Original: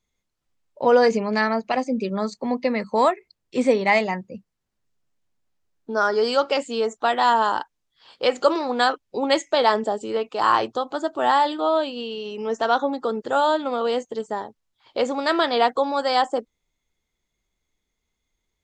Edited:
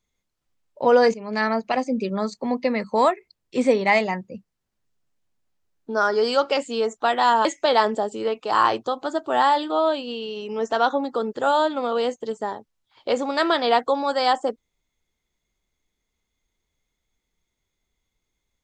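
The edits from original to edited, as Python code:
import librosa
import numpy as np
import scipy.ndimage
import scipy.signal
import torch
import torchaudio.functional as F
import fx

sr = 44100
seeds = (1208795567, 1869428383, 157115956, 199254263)

y = fx.edit(x, sr, fx.fade_in_from(start_s=1.14, length_s=0.34, floor_db=-19.0),
    fx.cut(start_s=7.45, length_s=1.89), tone=tone)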